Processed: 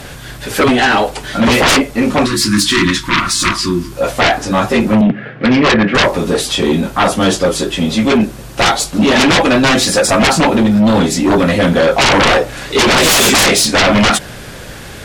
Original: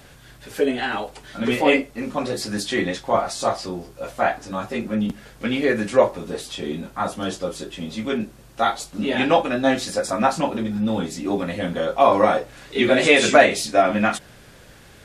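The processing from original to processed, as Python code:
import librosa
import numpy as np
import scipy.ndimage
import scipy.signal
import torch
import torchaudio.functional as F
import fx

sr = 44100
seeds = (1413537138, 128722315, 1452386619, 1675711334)

y = fx.cabinet(x, sr, low_hz=120.0, low_slope=24, high_hz=2500.0, hz=(130.0, 950.0, 1700.0), db=(5, -10, 3), at=(5.01, 5.95))
y = fx.fold_sine(y, sr, drive_db=18, ceiling_db=-1.5)
y = fx.spec_box(y, sr, start_s=2.26, length_s=1.66, low_hz=380.0, high_hz=910.0, gain_db=-23)
y = y * 10.0 ** (-5.0 / 20.0)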